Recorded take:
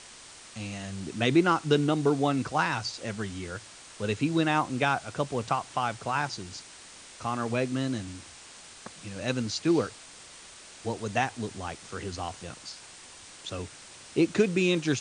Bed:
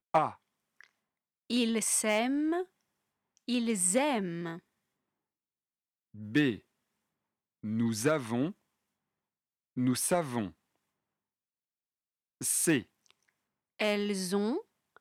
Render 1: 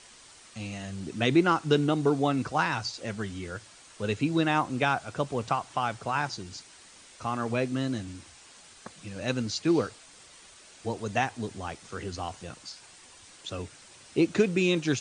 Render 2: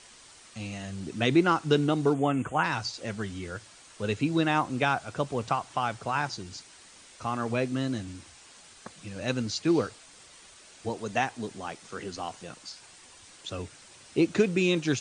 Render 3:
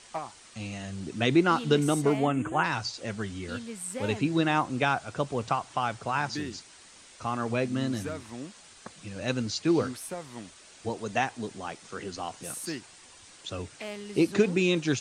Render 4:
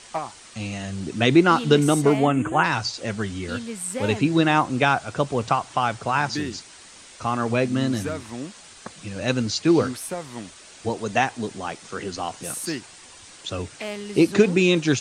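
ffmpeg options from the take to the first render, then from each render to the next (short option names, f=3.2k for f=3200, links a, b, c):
-af "afftdn=nr=6:nf=-49"
-filter_complex "[0:a]asplit=3[a][b][c];[a]afade=t=out:st=2.13:d=0.02[d];[b]asuperstop=centerf=4700:order=12:qfactor=1.5,afade=t=in:st=2.13:d=0.02,afade=t=out:st=2.63:d=0.02[e];[c]afade=t=in:st=2.63:d=0.02[f];[d][e][f]amix=inputs=3:normalize=0,asettb=1/sr,asplit=3[g][h][i];[g]atrim=end=10.894[j];[h]atrim=start=10.89:end=12.68,asetpts=PTS-STARTPTS,afade=t=in:d=0.004:c=qsin,afade=t=out:st=1.786:d=0.004:c=qsin,equalizer=f=80:t=o:w=0.77:g=-13.5[k];[i]atrim=start=12.676[l];[j][k]acrossfade=d=0.004:c1=hsin:c2=qsin[m];[m][l]acrossfade=d=0.004:c1=qsin:c2=hsin"
-filter_complex "[1:a]volume=-9dB[a];[0:a][a]amix=inputs=2:normalize=0"
-af "volume=6.5dB"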